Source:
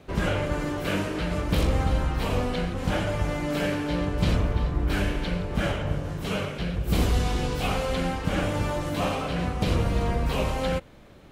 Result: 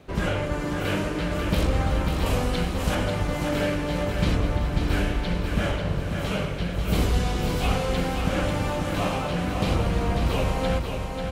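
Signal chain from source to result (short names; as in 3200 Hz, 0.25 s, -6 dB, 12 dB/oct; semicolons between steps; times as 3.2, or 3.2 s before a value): 2.26–2.95 high shelf 5300 Hz +10.5 dB; on a send: feedback echo 0.541 s, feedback 50%, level -5.5 dB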